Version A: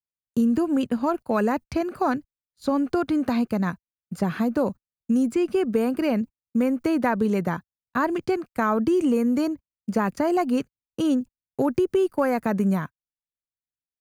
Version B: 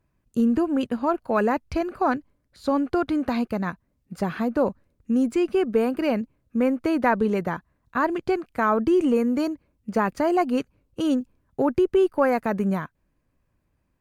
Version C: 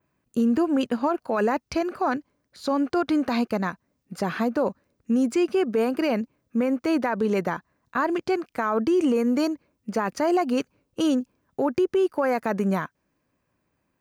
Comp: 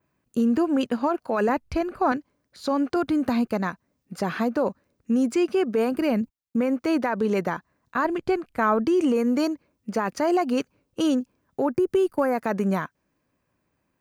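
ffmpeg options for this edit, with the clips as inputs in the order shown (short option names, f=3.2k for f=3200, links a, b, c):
-filter_complex "[1:a]asplit=2[a][b];[0:a]asplit=3[c][d][e];[2:a]asplit=6[f][g][h][i][j][k];[f]atrim=end=1.492[l];[a]atrim=start=1.488:end=2.122[m];[g]atrim=start=2.118:end=2.962[n];[c]atrim=start=2.958:end=3.512[o];[h]atrim=start=3.508:end=5.922[p];[d]atrim=start=5.918:end=6.562[q];[i]atrim=start=6.558:end=8.052[r];[b]atrim=start=8.048:end=8.852[s];[j]atrim=start=8.848:end=11.9[t];[e]atrim=start=11.66:end=12.42[u];[k]atrim=start=12.18[v];[l][m]acrossfade=d=0.004:c1=hsin:c2=hsin[w];[w][n]acrossfade=d=0.004:c1=hsin:c2=hsin[x];[x][o]acrossfade=d=0.004:c1=hsin:c2=hsin[y];[y][p]acrossfade=d=0.004:c1=hsin:c2=hsin[z];[z][q]acrossfade=d=0.004:c1=hsin:c2=hsin[aa];[aa][r]acrossfade=d=0.004:c1=hsin:c2=hsin[ab];[ab][s]acrossfade=d=0.004:c1=hsin:c2=hsin[ac];[ac][t]acrossfade=d=0.004:c1=hsin:c2=hsin[ad];[ad][u]acrossfade=d=0.24:c1=tri:c2=tri[ae];[ae][v]acrossfade=d=0.24:c1=tri:c2=tri"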